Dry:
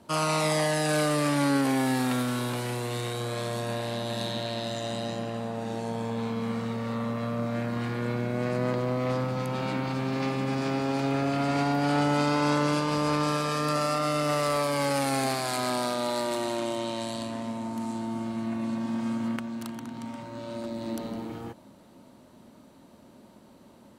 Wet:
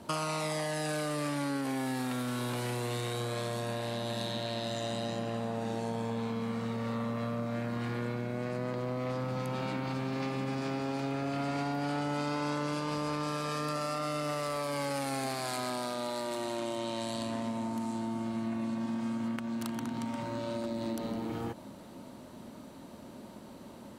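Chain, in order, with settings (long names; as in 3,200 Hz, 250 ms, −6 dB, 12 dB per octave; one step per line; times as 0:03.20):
downward compressor, threshold −37 dBFS, peak gain reduction 14.5 dB
level +5 dB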